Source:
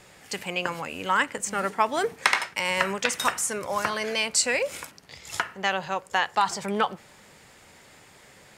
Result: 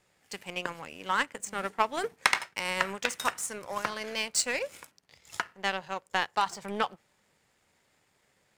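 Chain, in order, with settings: power-law curve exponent 1.4

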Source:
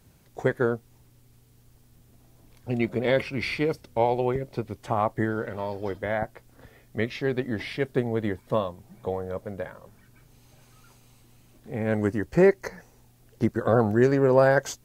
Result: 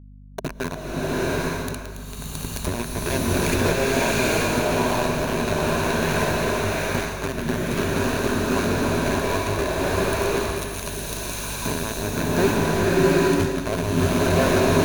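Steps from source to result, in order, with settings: trilling pitch shifter -5.5 st, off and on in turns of 91 ms; recorder AGC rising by 40 dB/s; sample gate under -17.5 dBFS; ripple EQ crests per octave 1.5, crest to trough 8 dB; soft clip -9.5 dBFS, distortion -18 dB; limiter -13.5 dBFS, peak gain reduction 3.5 dB; hum 50 Hz, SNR 13 dB; bloom reverb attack 0.84 s, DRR -8 dB; gain -2.5 dB

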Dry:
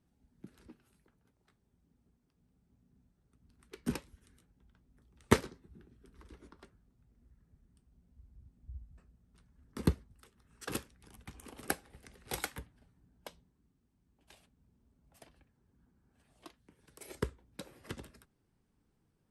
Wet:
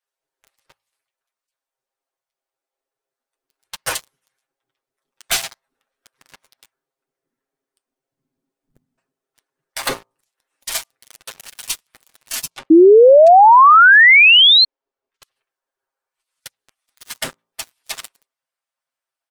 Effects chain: spectral gate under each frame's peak -20 dB weak; comb 7.5 ms, depth 89%; de-hum 56.44 Hz, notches 23; sample leveller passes 5; 12.7–14.65 painted sound rise 310–4300 Hz -14 dBFS; 12.5–15.23 air absorption 99 m; gain +7.5 dB

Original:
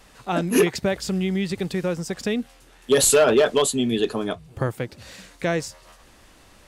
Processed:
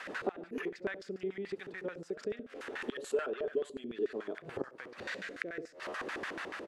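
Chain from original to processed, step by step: in parallel at -1 dB: vocal rider within 4 dB 0.5 s; on the sum: flipped gate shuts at -16 dBFS, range -25 dB; feedback echo 68 ms, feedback 22%, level -12.5 dB; compressor 10:1, threshold -38 dBFS, peak gain reduction 18 dB; HPF 260 Hz 6 dB/oct; on a send: reverse echo 1.035 s -16.5 dB; on the sum: LFO band-pass square 6.9 Hz 390–1600 Hz; rotary speaker horn 6.3 Hz, later 0.65 Hz, at 0.34; gain +15.5 dB

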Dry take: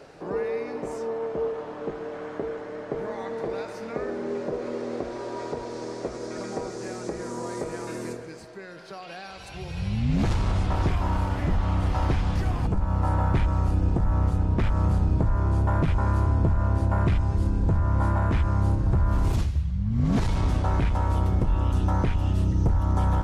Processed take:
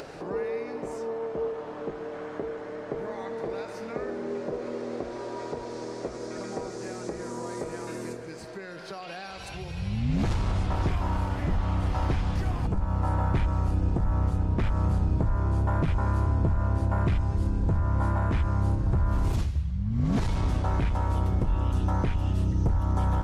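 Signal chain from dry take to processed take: upward compressor, threshold -30 dBFS; gain -2.5 dB

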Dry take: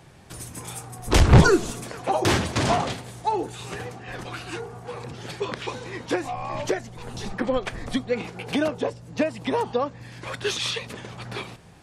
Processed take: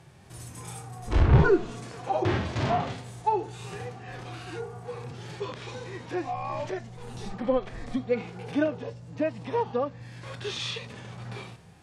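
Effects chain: treble ducked by the level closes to 2500 Hz, closed at -16.5 dBFS; harmonic-percussive split percussive -17 dB

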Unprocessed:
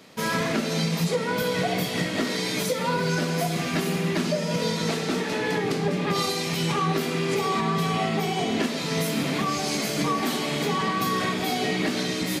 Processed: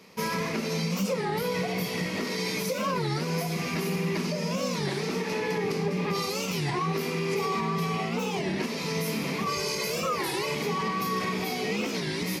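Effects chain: 9.47–10.55 comb 2 ms, depth 93%; limiter -18 dBFS, peak gain reduction 5 dB; ripple EQ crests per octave 0.83, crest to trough 7 dB; record warp 33 1/3 rpm, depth 250 cents; gain -3.5 dB

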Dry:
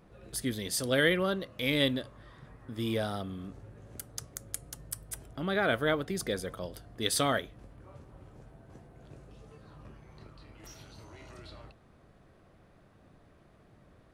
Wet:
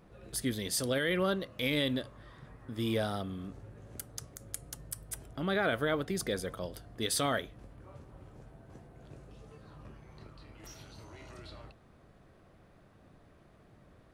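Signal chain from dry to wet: limiter -20 dBFS, peak gain reduction 8 dB

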